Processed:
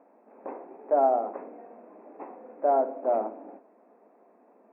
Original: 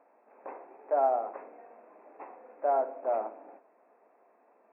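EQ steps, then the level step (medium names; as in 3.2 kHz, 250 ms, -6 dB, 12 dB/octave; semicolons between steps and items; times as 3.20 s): tilt shelf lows +4 dB, about 1.3 kHz; peaking EQ 220 Hz +10 dB 1.5 oct; 0.0 dB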